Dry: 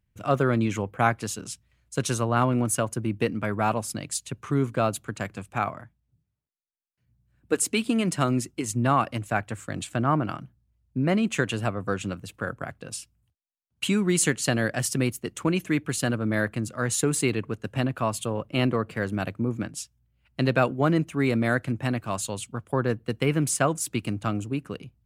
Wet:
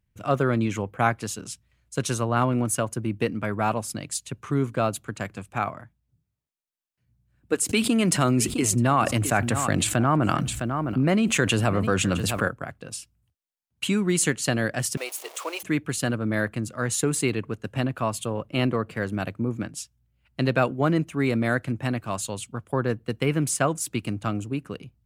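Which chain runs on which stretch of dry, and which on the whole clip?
7.69–12.48 s: treble shelf 7.7 kHz +4 dB + delay 660 ms -20 dB + level flattener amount 70%
14.97–15.63 s: jump at every zero crossing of -32.5 dBFS + inverse Chebyshev high-pass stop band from 190 Hz, stop band 50 dB + peaking EQ 1.6 kHz -6.5 dB 0.6 oct
whole clip: none

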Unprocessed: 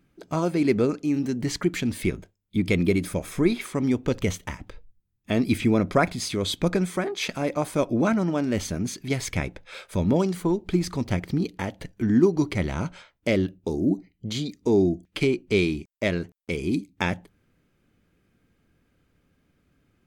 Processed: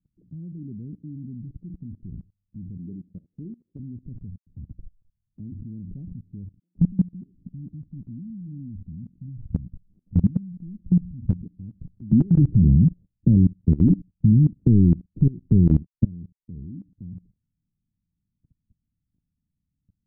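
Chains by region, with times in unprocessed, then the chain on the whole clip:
2.77–3.79 s: high-pass 780 Hz 6 dB/octave + doubling 47 ms -13 dB
4.37–5.52 s: hum notches 60/120/180/240 Hz + phase dispersion lows, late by 95 ms, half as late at 2.1 kHz
6.59–11.43 s: inverse Chebyshev band-stop 480–1600 Hz + waveshaping leveller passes 1 + bands offset in time highs, lows 170 ms, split 710 Hz
12.12–16.05 s: waveshaping leveller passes 3 + three bands compressed up and down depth 100%
whole clip: inverse Chebyshev low-pass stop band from 1.2 kHz, stop band 80 dB; level held to a coarse grid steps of 22 dB; trim +8 dB

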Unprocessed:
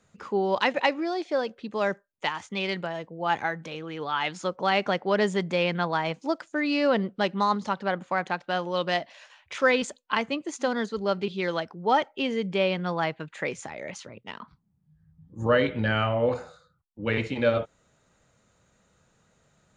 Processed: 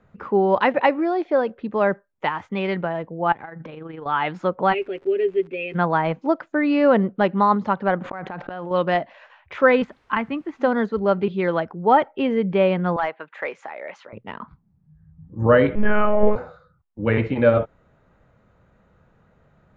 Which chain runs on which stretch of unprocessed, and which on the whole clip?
3.32–4.06 s: low-pass 5.5 kHz + compression 12:1, threshold -36 dBFS + AM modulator 24 Hz, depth 30%
4.72–5.74 s: two resonant band-passes 990 Hz, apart 2.8 oct + comb 7.3 ms, depth 73% + crackle 90 per s -38 dBFS
8.01–8.71 s: inverted gate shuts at -28 dBFS, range -30 dB + level flattener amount 100%
9.84–10.60 s: low-pass 3.1 kHz + peaking EQ 530 Hz -11 dB 0.94 oct + word length cut 10-bit, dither triangular
12.96–14.13 s: high-pass 610 Hz + hard clipper -21.5 dBFS
15.75–16.36 s: monotone LPC vocoder at 8 kHz 210 Hz + hysteresis with a dead band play -42 dBFS + distance through air 91 m
whole clip: low-pass 1.7 kHz 12 dB/octave; bass shelf 65 Hz +7.5 dB; trim +7 dB

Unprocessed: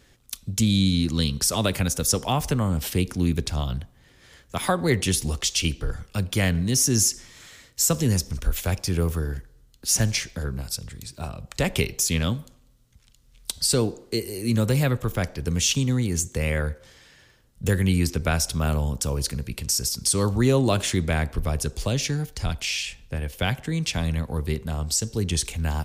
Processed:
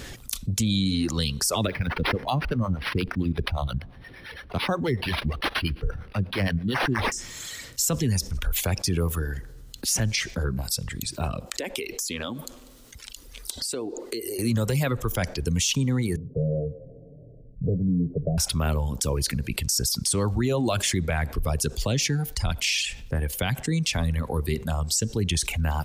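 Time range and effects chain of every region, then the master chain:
1.67–7.12 s: harmonic tremolo 8.6 Hz, crossover 460 Hz + decimation joined by straight lines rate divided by 6×
11.40–14.39 s: resonant low shelf 210 Hz -11.5 dB, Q 1.5 + compression 10:1, threshold -36 dBFS
16.16–18.38 s: rippled Chebyshev low-pass 680 Hz, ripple 6 dB + comb 7 ms, depth 62%
whole clip: reverb removal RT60 1.7 s; peak limiter -18 dBFS; level flattener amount 50%

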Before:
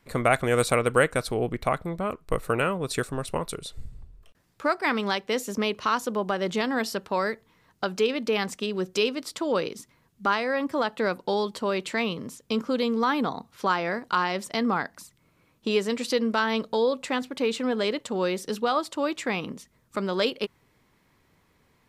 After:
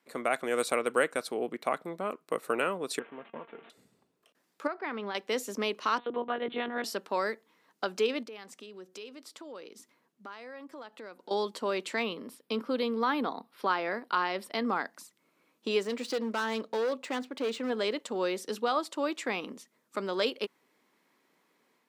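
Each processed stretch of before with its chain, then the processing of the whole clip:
2.99–3.70 s: one-bit delta coder 16 kbps, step -33.5 dBFS + distance through air 180 m + feedback comb 230 Hz, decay 0.16 s, mix 70%
4.67–5.15 s: compression 3:1, threshold -26 dBFS + distance through air 300 m
5.98–6.84 s: monotone LPC vocoder at 8 kHz 240 Hz + tape noise reduction on one side only encoder only
8.23–11.31 s: compression 2.5:1, threshold -45 dBFS + tape noise reduction on one side only decoder only
12.03–14.66 s: peaking EQ 7.2 kHz -12.5 dB 0.43 oct + band-stop 6.1 kHz, Q 6.9
15.83–17.70 s: median filter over 3 samples + treble shelf 4.4 kHz -5 dB + hard clipper -22.5 dBFS
whole clip: high-pass 230 Hz 24 dB/octave; level rider gain up to 4 dB; trim -8 dB

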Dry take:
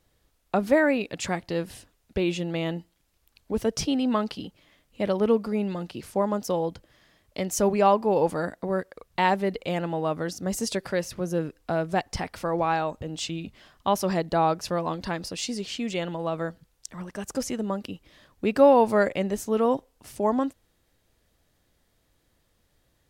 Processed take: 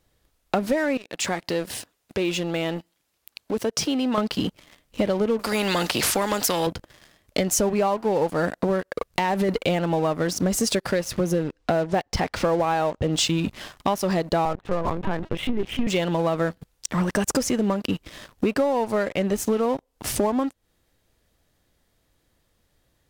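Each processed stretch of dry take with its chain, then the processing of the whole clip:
0.97–4.18 s: compression 2:1, threshold -47 dBFS + high-pass 280 Hz 6 dB/octave
5.39–6.67 s: high-pass 270 Hz 6 dB/octave + spectrum-flattening compressor 2:1
8.87–9.49 s: compression, threshold -33 dBFS + waveshaping leveller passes 1
11.43–13.13 s: low-pass 5.9 kHz + dynamic bell 530 Hz, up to +4 dB, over -36 dBFS, Q 1.4
14.45–15.87 s: low-pass 1.8 kHz + bass shelf 78 Hz +4 dB + LPC vocoder at 8 kHz pitch kept
whole clip: compression 16:1, threshold -36 dBFS; waveshaping leveller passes 3; trim +6.5 dB

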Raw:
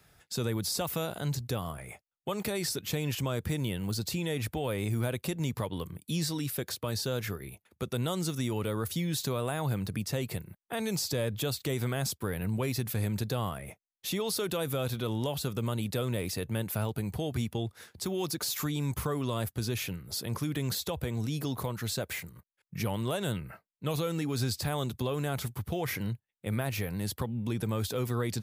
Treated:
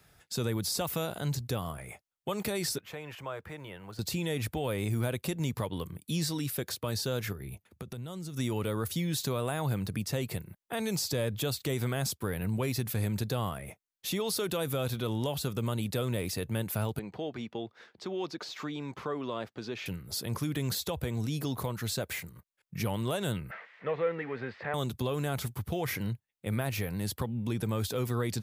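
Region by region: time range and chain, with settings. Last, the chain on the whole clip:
2.78–3.99 s: block-companded coder 7-bit + three-band isolator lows -15 dB, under 530 Hz, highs -18 dB, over 2.3 kHz + band-stop 240 Hz, Q 6.6
7.32–8.37 s: high-pass 63 Hz + bass shelf 190 Hz +11 dB + compression 8:1, threshold -37 dBFS
16.99–19.86 s: high-pass 270 Hz + distance through air 190 m
23.51–24.74 s: zero-crossing glitches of -26.5 dBFS + cabinet simulation 270–2200 Hz, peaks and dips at 300 Hz -8 dB, 490 Hz +6 dB, 1.9 kHz +10 dB
whole clip: none

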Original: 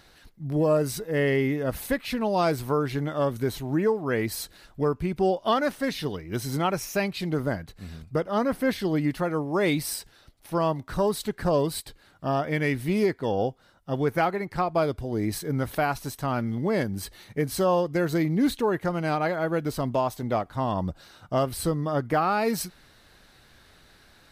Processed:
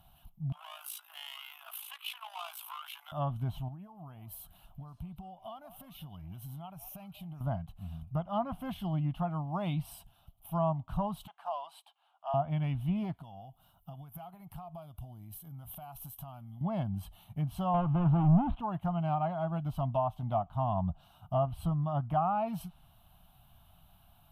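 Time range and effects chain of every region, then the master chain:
0.52–3.12 s: overdrive pedal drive 20 dB, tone 6.4 kHz, clips at -13 dBFS + AM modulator 55 Hz, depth 55% + Bessel high-pass 1.7 kHz, order 8
3.68–7.41 s: compression, threshold -37 dBFS + repeats whose band climbs or falls 189 ms, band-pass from 670 Hz, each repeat 1.4 oct, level -11 dB
11.27–12.34 s: Chebyshev high-pass 770 Hz, order 3 + distance through air 99 m
13.13–16.61 s: treble shelf 3.1 kHz +8.5 dB + compression 16:1, threshold -37 dBFS
17.74–18.59 s: zero-crossing glitches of -25.5 dBFS + low-pass 1.7 kHz + waveshaping leveller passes 3
whole clip: FFT filter 170 Hz 0 dB, 470 Hz -30 dB, 680 Hz 0 dB, 1.2 kHz -7 dB, 1.9 kHz -27 dB, 3 kHz -4 dB, 4.5 kHz -25 dB, 7.6 kHz -20 dB, 13 kHz +2 dB; low-pass that closes with the level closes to 1.7 kHz, closed at -24 dBFS; treble shelf 6.1 kHz +4.5 dB; trim -1 dB

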